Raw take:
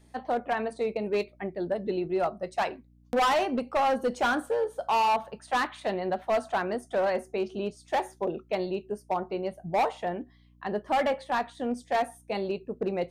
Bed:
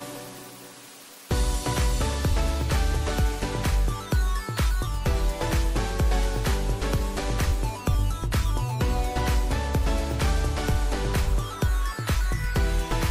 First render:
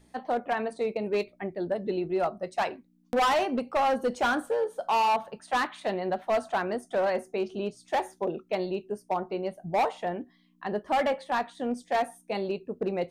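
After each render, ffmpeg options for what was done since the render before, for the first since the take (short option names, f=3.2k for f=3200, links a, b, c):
-af "bandreject=f=60:t=h:w=4,bandreject=f=120:t=h:w=4"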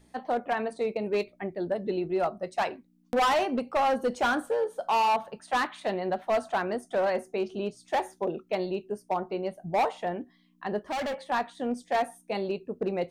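-filter_complex "[0:a]asettb=1/sr,asplit=3[a][b][c];[a]atrim=end=10.784[d];[b]atrim=start=10.78:end=11.28,asetpts=PTS-STARTPTS,afade=t=in:d=0.004:c=qsin,afade=t=out:st=0.496:d=0.004:c=qsin,asoftclip=type=hard:threshold=-29dB[e];[c]atrim=start=11.276[f];[d][e]acrossfade=d=0.004:c1=hsin:c2=qsin[g];[g][f]acrossfade=d=0.004:c1=qsin:c2=hsin"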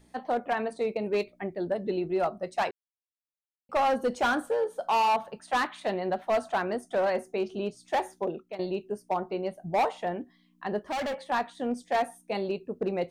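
-filter_complex "[0:a]asplit=4[a][b][c][d];[a]atrim=end=2.71,asetpts=PTS-STARTPTS,afade=t=out:st=2.706:d=0.004:c=hsin[e];[b]atrim=start=2.71:end=3.69,asetpts=PTS-STARTPTS,volume=0[f];[c]atrim=start=3.69:end=8.59,asetpts=PTS-STARTPTS,afade=t=in:d=0.004:c=hsin,afade=t=out:st=4.42:d=0.48:c=qsin:silence=0.199526[g];[d]atrim=start=8.59,asetpts=PTS-STARTPTS,afade=t=in:d=0.004:c=hsin:silence=0.199526[h];[e][f][g][h]concat=n=4:v=0:a=1"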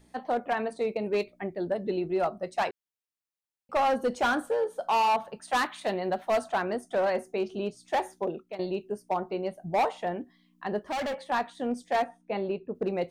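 -filter_complex "[0:a]asettb=1/sr,asplit=3[a][b][c];[a]atrim=end=5.424[d];[b]atrim=start=5.42:end=6.44,asetpts=PTS-STARTPTS,afade=t=in:d=0.004:c=qsin,afade=t=out:st=1.016:d=0.004:c=qsin,highshelf=f=5.4k:g=6.5[e];[c]atrim=start=6.436[f];[d][e]acrossfade=d=0.004:c1=hsin:c2=qsin[g];[g][f]acrossfade=d=0.004:c1=qsin:c2=hsin,asettb=1/sr,asplit=3[h][i][j];[h]atrim=end=12.044[k];[i]atrim=start=12.04:end=12.75,asetpts=PTS-STARTPTS,afade=t=in:d=0.004:c=qsin,afade=t=out:st=0.706:d=0.004:c=qsin,lowpass=2.6k[l];[j]atrim=start=12.746[m];[k][l]acrossfade=d=0.004:c1=hsin:c2=qsin[n];[n][m]acrossfade=d=0.004:c1=qsin:c2=hsin"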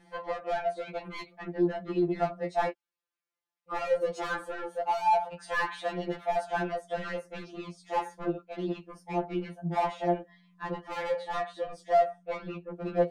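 -filter_complex "[0:a]asplit=2[a][b];[b]highpass=f=720:p=1,volume=18dB,asoftclip=type=tanh:threshold=-17.5dB[c];[a][c]amix=inputs=2:normalize=0,lowpass=f=1.2k:p=1,volume=-6dB,afftfilt=real='re*2.83*eq(mod(b,8),0)':imag='im*2.83*eq(mod(b,8),0)':win_size=2048:overlap=0.75"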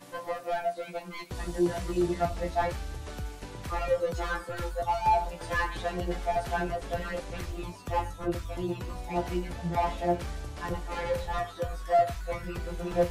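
-filter_complex "[1:a]volume=-13.5dB[a];[0:a][a]amix=inputs=2:normalize=0"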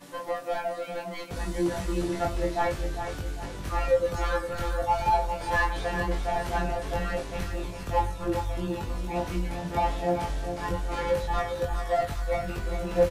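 -filter_complex "[0:a]asplit=2[a][b];[b]adelay=21,volume=-2dB[c];[a][c]amix=inputs=2:normalize=0,asplit=2[d][e];[e]aecho=0:1:404|808|1212|1616|2020:0.398|0.167|0.0702|0.0295|0.0124[f];[d][f]amix=inputs=2:normalize=0"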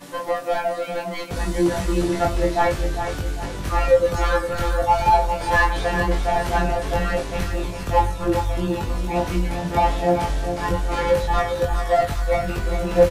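-af "volume=7.5dB"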